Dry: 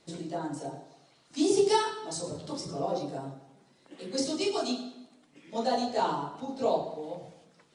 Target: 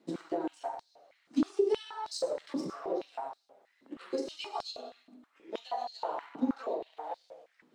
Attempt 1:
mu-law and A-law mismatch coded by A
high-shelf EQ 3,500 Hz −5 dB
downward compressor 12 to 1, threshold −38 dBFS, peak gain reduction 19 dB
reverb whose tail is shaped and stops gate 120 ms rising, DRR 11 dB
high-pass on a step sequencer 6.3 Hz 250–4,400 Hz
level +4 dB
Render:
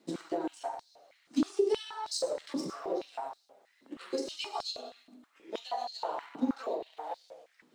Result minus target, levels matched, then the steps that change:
8,000 Hz band +5.5 dB
change: high-shelf EQ 3,500 Hz −13.5 dB

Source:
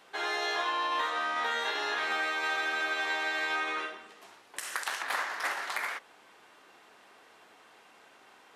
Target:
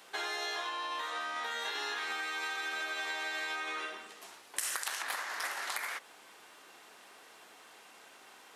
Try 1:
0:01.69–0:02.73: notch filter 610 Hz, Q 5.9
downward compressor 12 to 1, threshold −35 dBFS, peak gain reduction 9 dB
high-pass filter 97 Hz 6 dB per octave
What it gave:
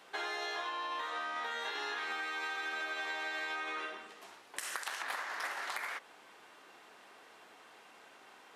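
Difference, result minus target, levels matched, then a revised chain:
8,000 Hz band −6.0 dB
0:01.69–0:02.73: notch filter 610 Hz, Q 5.9
downward compressor 12 to 1, threshold −35 dBFS, peak gain reduction 9 dB
high-pass filter 97 Hz 6 dB per octave
high-shelf EQ 4,700 Hz +10.5 dB

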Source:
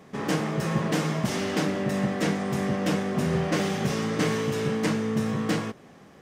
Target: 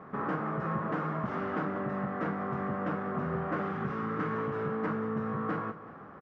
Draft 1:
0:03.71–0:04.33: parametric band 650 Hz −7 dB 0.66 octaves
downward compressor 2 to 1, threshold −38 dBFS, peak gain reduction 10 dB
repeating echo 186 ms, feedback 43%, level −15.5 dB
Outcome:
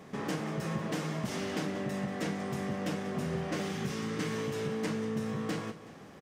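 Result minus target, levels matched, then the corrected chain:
1,000 Hz band −6.0 dB
0:03.71–0:04.33: parametric band 650 Hz −7 dB 0.66 octaves
downward compressor 2 to 1, threshold −38 dBFS, peak gain reduction 10 dB
low-pass with resonance 1,300 Hz, resonance Q 3.6
repeating echo 186 ms, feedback 43%, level −15.5 dB

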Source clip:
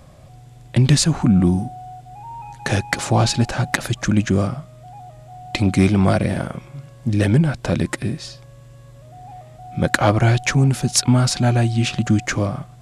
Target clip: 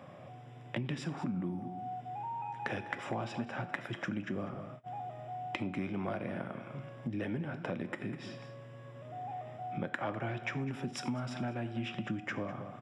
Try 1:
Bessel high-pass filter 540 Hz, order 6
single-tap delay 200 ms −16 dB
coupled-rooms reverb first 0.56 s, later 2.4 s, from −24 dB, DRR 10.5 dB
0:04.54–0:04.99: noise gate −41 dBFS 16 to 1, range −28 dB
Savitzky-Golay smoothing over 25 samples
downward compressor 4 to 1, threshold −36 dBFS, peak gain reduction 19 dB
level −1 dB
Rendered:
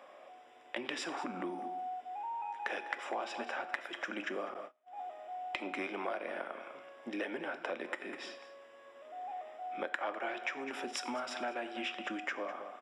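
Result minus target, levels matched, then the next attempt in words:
250 Hz band −5.5 dB
Bessel high-pass filter 190 Hz, order 6
single-tap delay 200 ms −16 dB
coupled-rooms reverb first 0.56 s, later 2.4 s, from −24 dB, DRR 10.5 dB
0:04.54–0:04.99: noise gate −41 dBFS 16 to 1, range −28 dB
Savitzky-Golay smoothing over 25 samples
downward compressor 4 to 1, threshold −36 dBFS, peak gain reduction 19.5 dB
level −1 dB

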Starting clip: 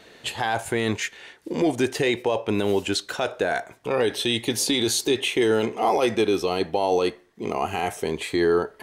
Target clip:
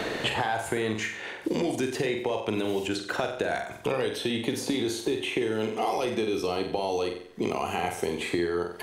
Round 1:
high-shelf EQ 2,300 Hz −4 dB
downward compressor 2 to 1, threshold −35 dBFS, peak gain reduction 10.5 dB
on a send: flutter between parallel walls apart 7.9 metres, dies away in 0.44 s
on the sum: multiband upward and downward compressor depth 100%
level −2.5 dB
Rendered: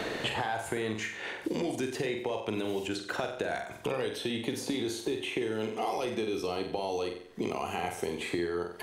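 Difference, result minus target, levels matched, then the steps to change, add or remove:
downward compressor: peak gain reduction +4.5 dB
change: downward compressor 2 to 1, threshold −26 dBFS, peak gain reduction 6 dB

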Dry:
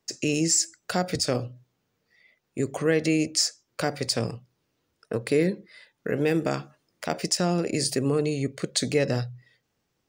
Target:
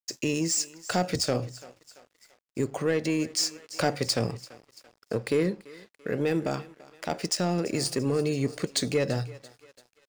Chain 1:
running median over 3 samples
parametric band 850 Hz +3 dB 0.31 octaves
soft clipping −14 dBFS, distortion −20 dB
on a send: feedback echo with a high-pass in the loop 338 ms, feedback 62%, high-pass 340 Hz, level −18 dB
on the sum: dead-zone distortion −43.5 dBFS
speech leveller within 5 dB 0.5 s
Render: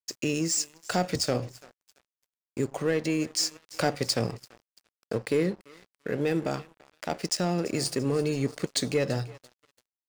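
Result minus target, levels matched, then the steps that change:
dead-zone distortion: distortion +10 dB
change: dead-zone distortion −54.5 dBFS

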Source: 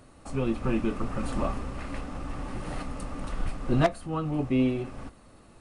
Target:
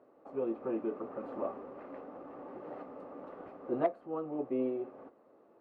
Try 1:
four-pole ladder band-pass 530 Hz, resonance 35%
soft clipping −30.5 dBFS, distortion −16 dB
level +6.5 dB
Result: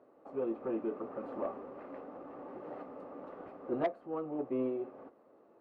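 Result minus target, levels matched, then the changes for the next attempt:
soft clipping: distortion +10 dB
change: soft clipping −23.5 dBFS, distortion −25 dB

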